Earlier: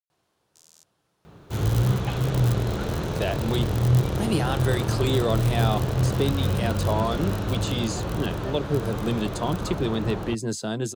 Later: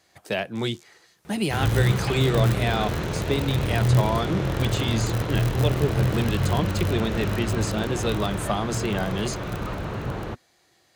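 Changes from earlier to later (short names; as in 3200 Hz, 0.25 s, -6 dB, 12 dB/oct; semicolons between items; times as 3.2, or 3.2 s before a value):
speech: entry -2.90 s; master: add bell 2100 Hz +6.5 dB 0.86 oct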